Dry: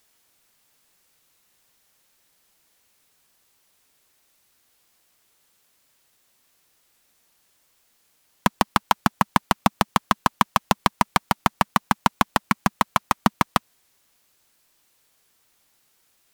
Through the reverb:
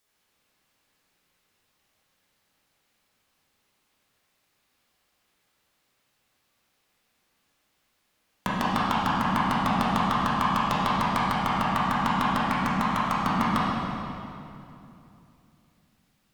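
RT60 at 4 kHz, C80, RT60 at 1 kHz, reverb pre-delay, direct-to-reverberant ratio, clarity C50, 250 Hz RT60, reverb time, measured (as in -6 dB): 2.2 s, -1.5 dB, 2.7 s, 9 ms, -9.0 dB, -3.5 dB, 3.6 s, 2.9 s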